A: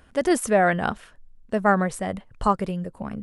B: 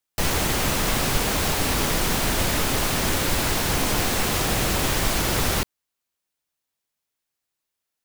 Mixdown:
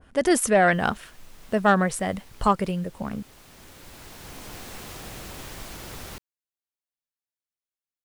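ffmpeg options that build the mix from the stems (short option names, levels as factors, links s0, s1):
-filter_complex "[0:a]acontrast=62,volume=0.531,asplit=2[s0][s1];[1:a]adelay=550,volume=0.15[s2];[s1]apad=whole_len=379003[s3];[s2][s3]sidechaincompress=threshold=0.0126:ratio=5:attack=16:release=1330[s4];[s0][s4]amix=inputs=2:normalize=0,adynamicequalizer=threshold=0.0178:dfrequency=1600:dqfactor=0.7:tfrequency=1600:tqfactor=0.7:attack=5:release=100:ratio=0.375:range=2:mode=boostabove:tftype=highshelf"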